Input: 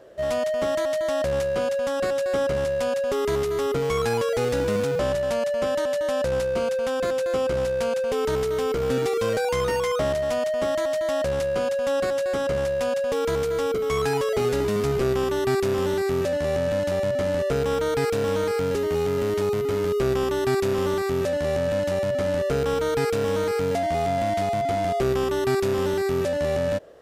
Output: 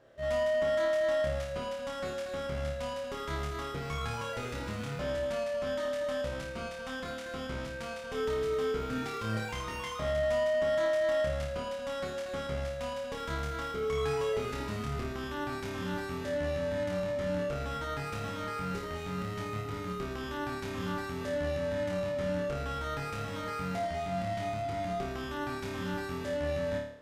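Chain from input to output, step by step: peaking EQ 490 Hz -9.5 dB 1.5 oct; peak limiter -20 dBFS, peak gain reduction 5.5 dB; treble shelf 4.9 kHz -10 dB; on a send: flutter echo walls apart 4.7 m, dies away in 0.6 s; on the sum: trim -6.5 dB

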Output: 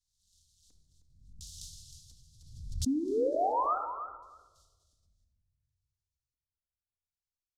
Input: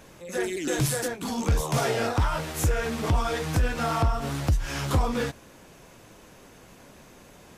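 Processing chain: spectral contrast reduction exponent 0.12; Doppler pass-by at 1.57 s, 23 m/s, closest 1.2 m; inverse Chebyshev band-stop 330–2200 Hz, stop band 60 dB; in parallel at 0 dB: compression, threshold -50 dBFS, peak gain reduction 20.5 dB; on the sum: flange 0.94 Hz, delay 8.4 ms, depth 4.7 ms, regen +70%; LFO low-pass square 0.71 Hz 320–3500 Hz; painted sound rise, 2.86–3.78 s, 250–1400 Hz -32 dBFS; feedback delay 312 ms, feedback 15%, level -10 dB; on a send at -2 dB: reverberation RT60 1.2 s, pre-delay 4 ms; on the sum: swell ahead of each attack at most 59 dB/s

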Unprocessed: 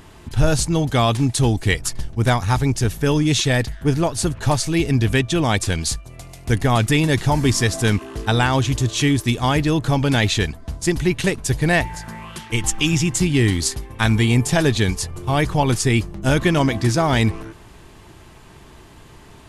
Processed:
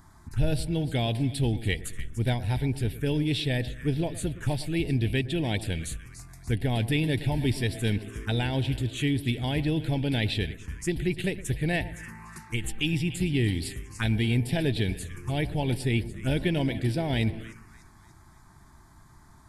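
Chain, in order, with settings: two-band feedback delay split 1.6 kHz, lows 114 ms, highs 292 ms, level -15 dB; touch-sensitive phaser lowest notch 460 Hz, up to 1.2 kHz, full sweep at -15.5 dBFS; trim -8 dB

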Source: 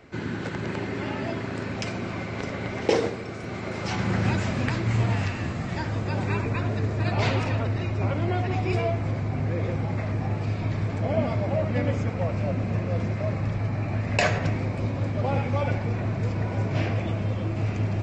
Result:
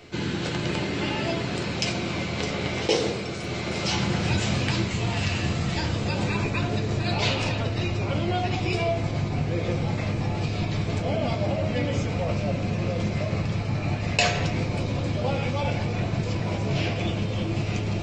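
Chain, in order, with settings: resonant high shelf 2.4 kHz +7 dB, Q 1.5; in parallel at -3 dB: compressor with a negative ratio -28 dBFS; on the sum: reverberation RT60 0.35 s, pre-delay 6 ms, DRR 4 dB; trim -4 dB

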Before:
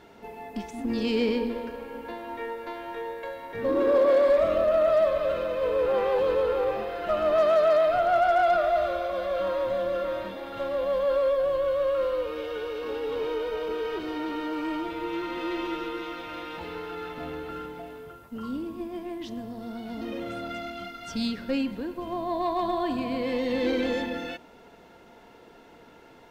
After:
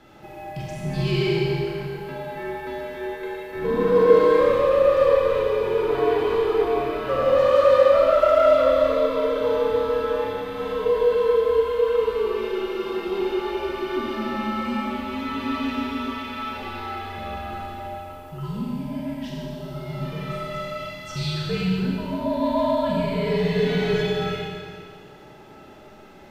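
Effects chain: frequency shift -82 Hz; Schroeder reverb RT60 2 s, combs from 29 ms, DRR -4 dB

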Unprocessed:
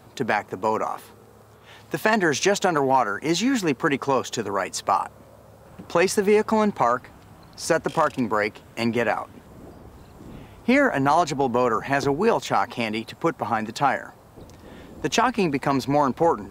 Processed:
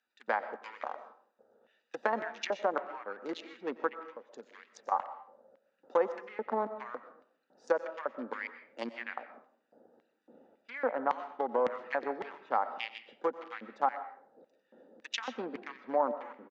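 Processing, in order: local Wiener filter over 41 samples; low-pass that closes with the level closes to 1.1 kHz, closed at -17 dBFS; 3.87–4.92 s: compression 10:1, threshold -31 dBFS, peak gain reduction 14.5 dB; LFO high-pass square 1.8 Hz 560–2300 Hz; cabinet simulation 140–7200 Hz, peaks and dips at 140 Hz -6 dB, 230 Hz +6 dB, 400 Hz -7 dB, 660 Hz -10 dB, 2.5 kHz -8 dB; delay 90 ms -21.5 dB; algorithmic reverb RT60 0.55 s, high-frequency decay 0.5×, pre-delay 85 ms, DRR 12 dB; trim -6.5 dB

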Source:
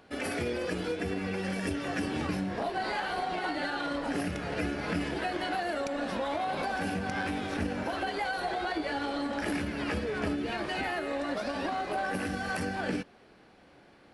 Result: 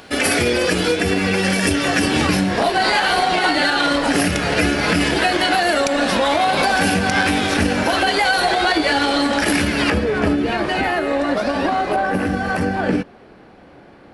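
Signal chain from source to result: treble shelf 2.2 kHz +9 dB, from 9.90 s -4 dB, from 11.96 s -10 dB; loudness maximiser +19.5 dB; trim -5.5 dB

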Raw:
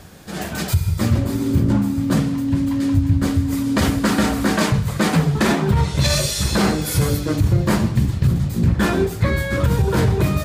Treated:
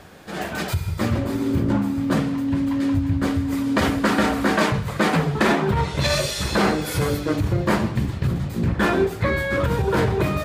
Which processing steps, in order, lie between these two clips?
tone controls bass -8 dB, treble -9 dB; trim +1.5 dB

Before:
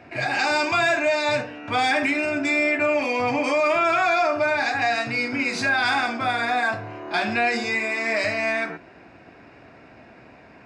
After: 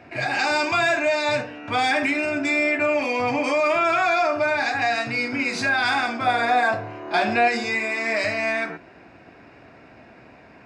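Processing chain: 6.26–7.48 s: dynamic bell 560 Hz, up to +6 dB, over -35 dBFS, Q 0.96

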